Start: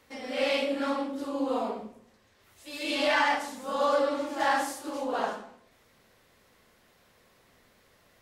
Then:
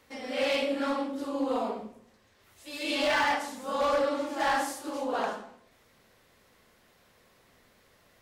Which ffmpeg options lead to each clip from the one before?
ffmpeg -i in.wav -af "volume=21.5dB,asoftclip=hard,volume=-21.5dB" out.wav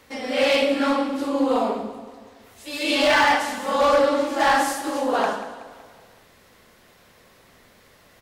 ffmpeg -i in.wav -af "aecho=1:1:187|374|561|748|935:0.2|0.102|0.0519|0.0265|0.0135,volume=8.5dB" out.wav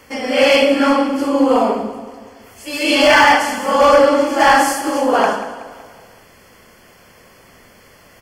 ffmpeg -i in.wav -af "asuperstop=centerf=3800:order=12:qfactor=5.7,volume=7.5dB" out.wav

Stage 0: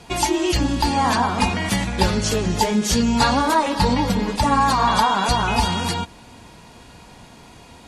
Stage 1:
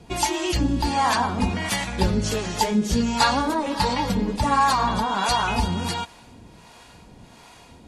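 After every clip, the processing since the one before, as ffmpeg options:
ffmpeg -i in.wav -filter_complex "[0:a]acrossover=split=520[link_01][link_02];[link_01]aeval=exprs='val(0)*(1-0.7/2+0.7/2*cos(2*PI*1.4*n/s))':channel_layout=same[link_03];[link_02]aeval=exprs='val(0)*(1-0.7/2-0.7/2*cos(2*PI*1.4*n/s))':channel_layout=same[link_04];[link_03][link_04]amix=inputs=2:normalize=0" out.wav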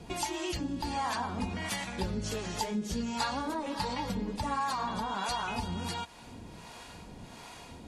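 ffmpeg -i in.wav -af "acompressor=threshold=-40dB:ratio=2,bandreject=frequency=60:width_type=h:width=6,bandreject=frequency=120:width_type=h:width=6" out.wav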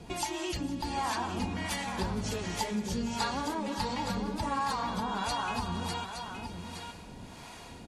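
ffmpeg -i in.wav -af "aecho=1:1:182|463|868:0.112|0.119|0.422" out.wav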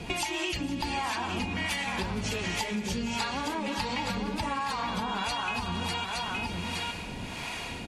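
ffmpeg -i in.wav -af "equalizer=frequency=2500:width_type=o:width=0.91:gain=9.5,acompressor=threshold=-36dB:ratio=6,volume=7.5dB" out.wav

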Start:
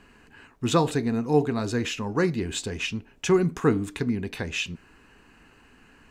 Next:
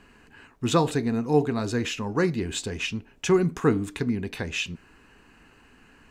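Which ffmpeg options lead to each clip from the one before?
ffmpeg -i in.wav -af anull out.wav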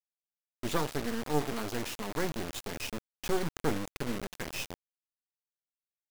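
ffmpeg -i in.wav -af "aresample=16000,aeval=exprs='max(val(0),0)':channel_layout=same,aresample=44100,acrusher=bits=4:mix=0:aa=0.000001,volume=-5.5dB" out.wav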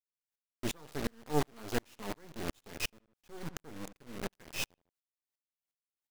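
ffmpeg -i in.wav -filter_complex "[0:a]asplit=2[link_01][link_02];[link_02]adelay=75,lowpass=frequency=3700:poles=1,volume=-21.5dB,asplit=2[link_03][link_04];[link_04]adelay=75,lowpass=frequency=3700:poles=1,volume=0.34[link_05];[link_01][link_03][link_05]amix=inputs=3:normalize=0,aeval=exprs='val(0)*pow(10,-39*if(lt(mod(-2.8*n/s,1),2*abs(-2.8)/1000),1-mod(-2.8*n/s,1)/(2*abs(-2.8)/1000),(mod(-2.8*n/s,1)-2*abs(-2.8)/1000)/(1-2*abs(-2.8)/1000))/20)':channel_layout=same,volume=5.5dB" out.wav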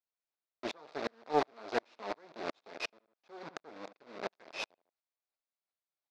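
ffmpeg -i in.wav -af "highpass=420,equalizer=frequency=650:width_type=q:width=4:gain=5,equalizer=frequency=1800:width_type=q:width=4:gain=-4,equalizer=frequency=3000:width_type=q:width=4:gain=-9,lowpass=frequency=4400:width=0.5412,lowpass=frequency=4400:width=1.3066,aeval=exprs='0.1*(cos(1*acos(clip(val(0)/0.1,-1,1)))-cos(1*PI/2))+0.00398*(cos(7*acos(clip(val(0)/0.1,-1,1)))-cos(7*PI/2))':channel_layout=same,volume=4.5dB" out.wav

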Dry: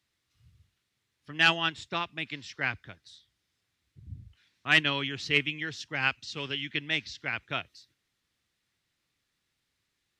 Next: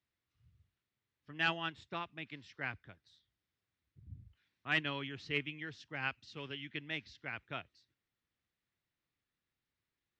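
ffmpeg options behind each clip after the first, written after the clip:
ffmpeg -i in.wav -af "aemphasis=mode=reproduction:type=75fm,volume=-8.5dB" out.wav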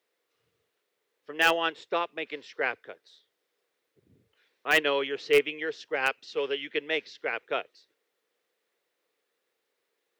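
ffmpeg -i in.wav -filter_complex "[0:a]highpass=frequency=460:width_type=q:width=4.9,asplit=2[link_01][link_02];[link_02]aeval=exprs='(mod(11.2*val(0)+1,2)-1)/11.2':channel_layout=same,volume=-11dB[link_03];[link_01][link_03]amix=inputs=2:normalize=0,volume=7.5dB" out.wav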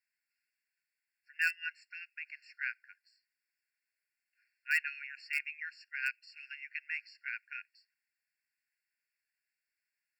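ffmpeg -i in.wav -af "afftfilt=real='re*eq(mod(floor(b*sr/1024/1400),2),1)':imag='im*eq(mod(floor(b*sr/1024/1400),2),1)':win_size=1024:overlap=0.75,volume=-6dB" out.wav

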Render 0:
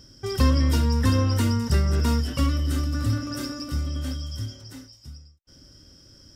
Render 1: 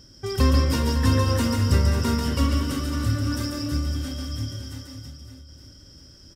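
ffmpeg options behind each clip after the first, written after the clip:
ffmpeg -i in.wav -af "aecho=1:1:140|322|558.6|866.2|1266:0.631|0.398|0.251|0.158|0.1" out.wav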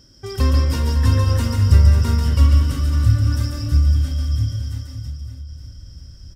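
ffmpeg -i in.wav -af "asubboost=boost=7.5:cutoff=120,volume=-1dB" out.wav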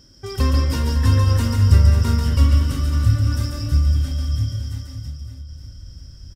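ffmpeg -i in.wav -filter_complex "[0:a]asplit=2[link_01][link_02];[link_02]adelay=22,volume=-12dB[link_03];[link_01][link_03]amix=inputs=2:normalize=0" out.wav

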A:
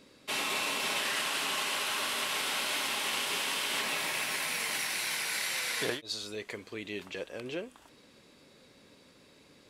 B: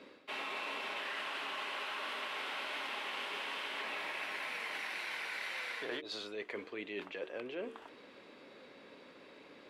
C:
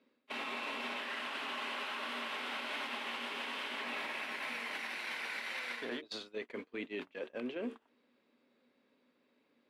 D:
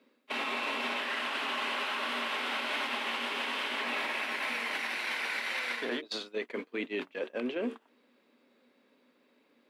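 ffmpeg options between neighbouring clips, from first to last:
ffmpeg -i in.wav -filter_complex "[0:a]acrossover=split=240 3400:gain=0.141 1 0.1[link_01][link_02][link_03];[link_01][link_02][link_03]amix=inputs=3:normalize=0,bandreject=frequency=75.29:width_type=h:width=4,bandreject=frequency=150.58:width_type=h:width=4,bandreject=frequency=225.87:width_type=h:width=4,bandreject=frequency=301.16:width_type=h:width=4,bandreject=frequency=376.45:width_type=h:width=4,bandreject=frequency=451.74:width_type=h:width=4,areverse,acompressor=threshold=-45dB:ratio=5,areverse,volume=6dB" out.wav
ffmpeg -i in.wav -af "equalizer=frequency=240:width=7:gain=14,agate=range=-26dB:threshold=-41dB:ratio=16:detection=peak,alimiter=level_in=13dB:limit=-24dB:level=0:latency=1:release=259,volume=-13dB,volume=6.5dB" out.wav
ffmpeg -i in.wav -af "highpass=180,volume=6.5dB" out.wav

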